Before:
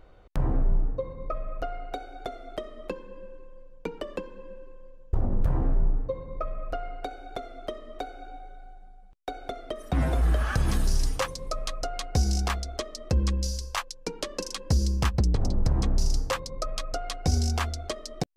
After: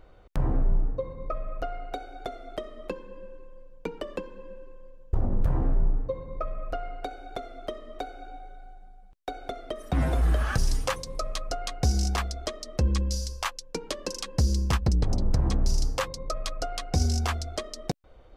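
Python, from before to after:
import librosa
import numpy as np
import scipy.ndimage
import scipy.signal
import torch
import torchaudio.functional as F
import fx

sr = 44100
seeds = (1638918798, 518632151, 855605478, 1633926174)

y = fx.edit(x, sr, fx.cut(start_s=10.58, length_s=0.32), tone=tone)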